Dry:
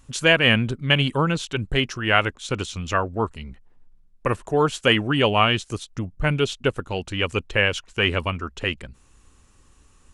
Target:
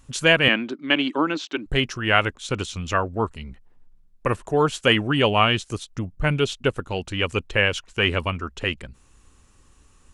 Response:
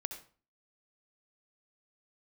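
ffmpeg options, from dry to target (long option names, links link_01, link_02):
-filter_complex "[0:a]asettb=1/sr,asplit=3[link_01][link_02][link_03];[link_01]atrim=end=0.484[link_04];[link_02]atrim=start=0.48:end=1.66,asetpts=PTS-STARTPTS,afade=type=in:duration=0.004:curve=qsin,afade=type=out:start_time=1.176:duration=0.004:curve=qsin,highpass=frequency=260:width=0.5412,highpass=frequency=260:width=1.3066,equalizer=frequency=300:width_type=q:width=4:gain=10,equalizer=frequency=470:width_type=q:width=4:gain=-6,equalizer=frequency=3000:width_type=q:width=4:gain=-3,lowpass=frequency=5800:width=0.5412,lowpass=frequency=5800:width=1.3066[link_05];[link_03]atrim=start=1.656[link_06];[link_04][link_05]acrossfade=duration=0.004:curve1=hsin:curve2=qsin[link_07];[link_07][link_06]acrossfade=duration=0.004:curve1=qsin:curve2=hsin"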